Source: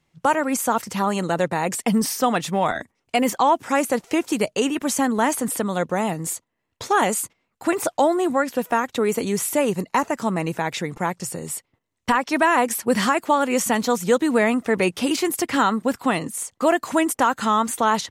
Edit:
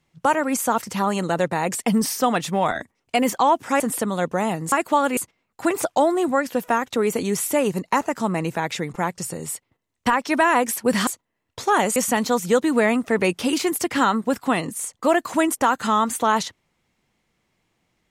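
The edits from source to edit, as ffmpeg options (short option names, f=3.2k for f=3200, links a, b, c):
-filter_complex "[0:a]asplit=6[a][b][c][d][e][f];[a]atrim=end=3.802[g];[b]atrim=start=5.378:end=6.302[h];[c]atrim=start=13.088:end=13.542[i];[d]atrim=start=7.188:end=13.092[j];[e]atrim=start=6.298:end=7.192[k];[f]atrim=start=13.538[l];[g][h]acrossfade=d=0.004:c1=hsin:c2=hsin[m];[m][i]acrossfade=d=0.004:c1=hsin:c2=hsin[n];[n][j]acrossfade=d=0.004:c1=hsin:c2=hsin[o];[o][k]acrossfade=d=0.004:c1=hsin:c2=hsin[p];[p][l]acrossfade=d=0.004:c1=hsin:c2=hsin"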